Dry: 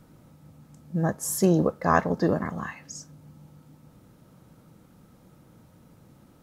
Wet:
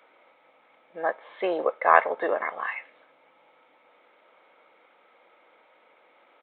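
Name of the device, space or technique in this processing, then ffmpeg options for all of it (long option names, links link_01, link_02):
musical greeting card: -af "aresample=8000,aresample=44100,highpass=frequency=510:width=0.5412,highpass=frequency=510:width=1.3066,equalizer=frequency=2200:width_type=o:width=0.23:gain=12,volume=4.5dB"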